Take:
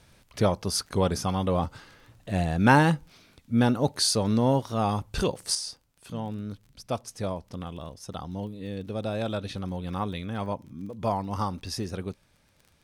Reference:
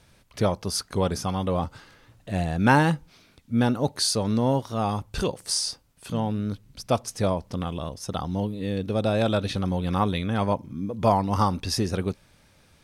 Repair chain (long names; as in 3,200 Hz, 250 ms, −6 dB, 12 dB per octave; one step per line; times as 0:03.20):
click removal
level correction +7 dB, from 0:05.55